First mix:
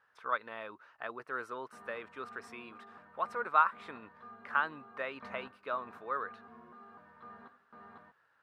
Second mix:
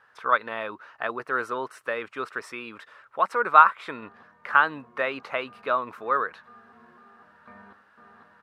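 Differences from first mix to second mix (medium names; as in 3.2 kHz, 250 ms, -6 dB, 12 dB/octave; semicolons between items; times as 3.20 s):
speech +11.5 dB; background: entry +2.25 s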